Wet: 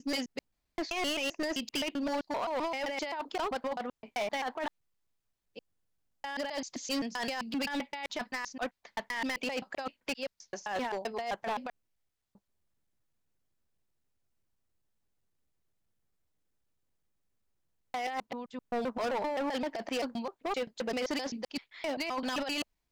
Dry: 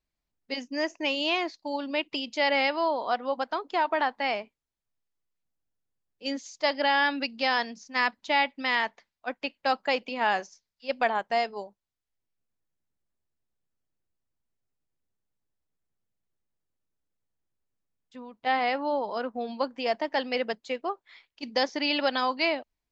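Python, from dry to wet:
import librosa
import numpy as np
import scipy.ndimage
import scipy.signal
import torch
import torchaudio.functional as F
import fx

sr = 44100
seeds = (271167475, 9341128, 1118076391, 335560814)

y = fx.block_reorder(x, sr, ms=130.0, group=6)
y = fx.over_compress(y, sr, threshold_db=-29.0, ratio=-0.5)
y = np.clip(y, -10.0 ** (-29.0 / 20.0), 10.0 ** (-29.0 / 20.0))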